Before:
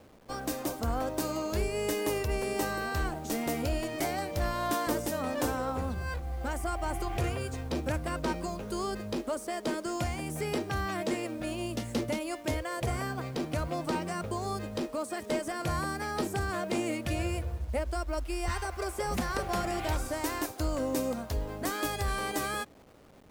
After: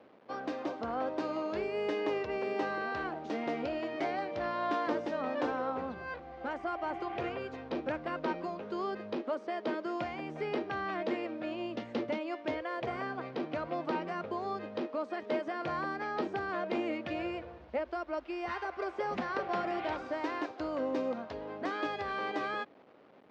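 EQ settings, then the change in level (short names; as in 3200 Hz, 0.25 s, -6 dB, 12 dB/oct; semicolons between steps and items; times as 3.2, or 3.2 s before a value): BPF 270–4600 Hz; air absorption 210 m; 0.0 dB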